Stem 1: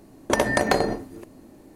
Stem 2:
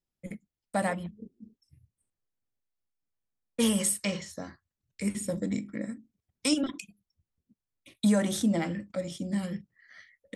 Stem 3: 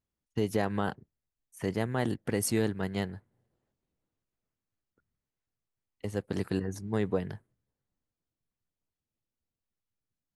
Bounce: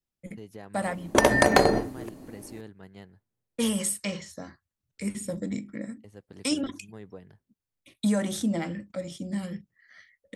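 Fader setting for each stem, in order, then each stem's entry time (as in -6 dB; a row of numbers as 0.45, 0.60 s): +2.0, -1.0, -15.0 dB; 0.85, 0.00, 0.00 s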